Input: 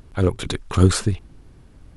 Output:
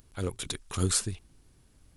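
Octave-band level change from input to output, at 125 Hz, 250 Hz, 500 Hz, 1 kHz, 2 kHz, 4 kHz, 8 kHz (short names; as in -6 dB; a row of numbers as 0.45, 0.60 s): -14.0, -14.0, -13.5, -12.0, -10.5, -5.0, 0.0 dB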